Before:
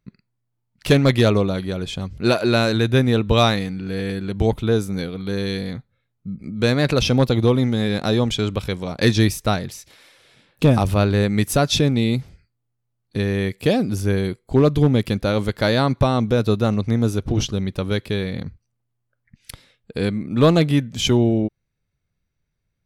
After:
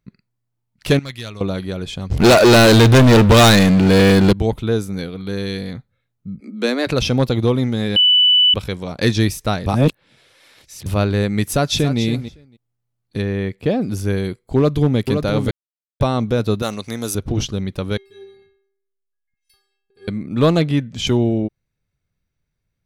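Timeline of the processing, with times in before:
0:00.99–0:01.41: guitar amp tone stack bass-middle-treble 5-5-5
0:02.10–0:04.33: leveller curve on the samples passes 5
0:06.40–0:06.87: Butterworth high-pass 200 Hz 96 dB per octave
0:07.96–0:08.54: beep over 2,980 Hz −9 dBFS
0:09.66–0:10.86: reverse
0:11.50–0:12.00: delay throw 280 ms, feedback 10%, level −11 dB
0:13.21–0:13.81: low-pass filter 2,800 Hz → 1,300 Hz 6 dB per octave
0:14.55–0:14.99: delay throw 520 ms, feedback 25%, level −6.5 dB
0:15.51–0:16.00: silence
0:16.62–0:17.15: RIAA equalisation recording
0:17.97–0:20.08: stiff-string resonator 390 Hz, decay 0.75 s, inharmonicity 0.008
0:20.61–0:21.07: high-frequency loss of the air 50 metres

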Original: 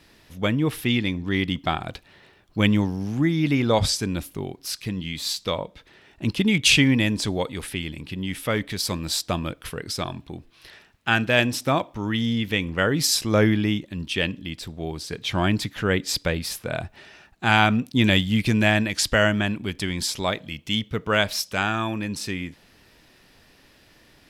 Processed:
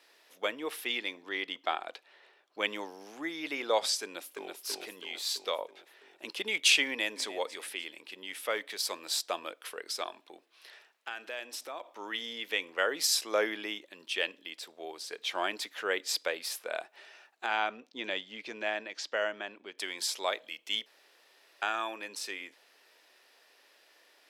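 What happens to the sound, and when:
0:01.29–0:02.68: high-shelf EQ 8,200 Hz −9.5 dB
0:04.03–0:04.55: delay throw 330 ms, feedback 60%, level −3.5 dB
0:06.86–0:07.26: delay throw 300 ms, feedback 35%, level −15.5 dB
0:10.08–0:11.91: downward compressor, threshold −29 dBFS
0:17.46–0:19.78: drawn EQ curve 120 Hz 0 dB, 6,300 Hz −10 dB, 10,000 Hz −26 dB
0:20.86–0:21.62: fill with room tone
whole clip: high-pass filter 430 Hz 24 dB per octave; level −6 dB

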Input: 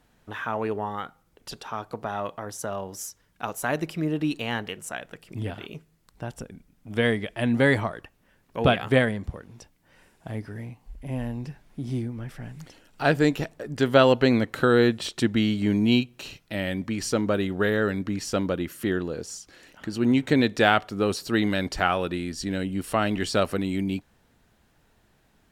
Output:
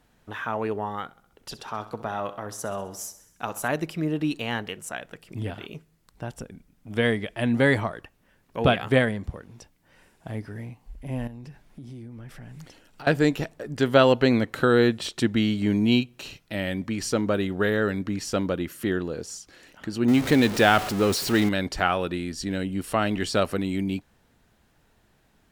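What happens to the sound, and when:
0:01.04–0:03.68: repeating echo 65 ms, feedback 59%, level −15 dB
0:11.27–0:13.07: downward compressor, threshold −38 dBFS
0:20.08–0:21.49: converter with a step at zero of −26 dBFS

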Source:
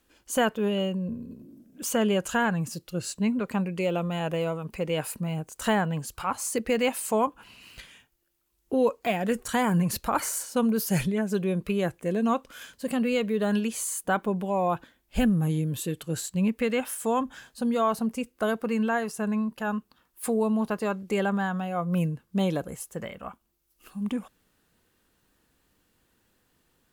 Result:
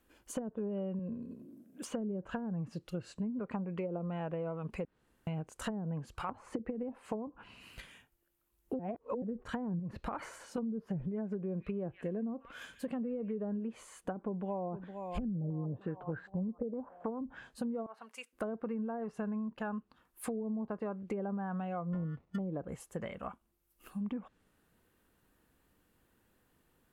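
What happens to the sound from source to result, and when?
0:00.99–0:01.87: high-pass filter 220 Hz 6 dB per octave
0:03.51–0:03.99: parametric band 1,100 Hz +6 dB 1.3 octaves
0:04.85–0:05.27: fill with room tone
0:06.29–0:06.98: multiband upward and downward compressor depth 100%
0:08.79–0:09.22: reverse
0:09.79–0:10.58: downward compressor, threshold −25 dBFS
0:11.17–0:13.51: echo through a band-pass that steps 149 ms, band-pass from 2,400 Hz, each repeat 0.7 octaves, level −11 dB
0:14.26–0:14.74: delay throw 460 ms, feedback 50%, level −14.5 dB
0:15.35–0:17.19: low-pass on a step sequencer 6.5 Hz 590–1,600 Hz
0:17.86–0:18.33: high-pass filter 1,300 Hz
0:21.93–0:22.39: sample-rate reduction 1,600 Hz
whole clip: treble cut that deepens with the level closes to 350 Hz, closed at −20 dBFS; downward compressor, threshold −33 dBFS; parametric band 5,200 Hz −8 dB 1.8 octaves; level −1.5 dB

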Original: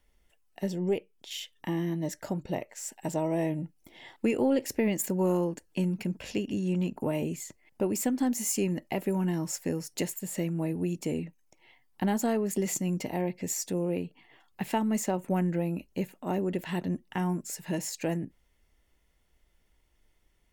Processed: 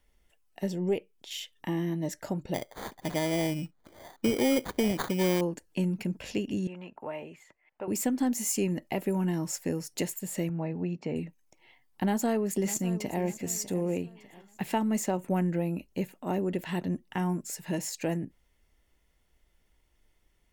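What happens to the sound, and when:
0:02.54–0:05.41: sample-rate reduction 2,700 Hz
0:06.67–0:07.88: three-way crossover with the lows and the highs turned down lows −17 dB, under 590 Hz, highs −23 dB, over 2,800 Hz
0:10.49–0:11.16: loudspeaker in its box 110–4,300 Hz, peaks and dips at 320 Hz −6 dB, 810 Hz +4 dB, 3,400 Hz −10 dB
0:12.03–0:13.21: delay throw 600 ms, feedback 40%, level −14.5 dB

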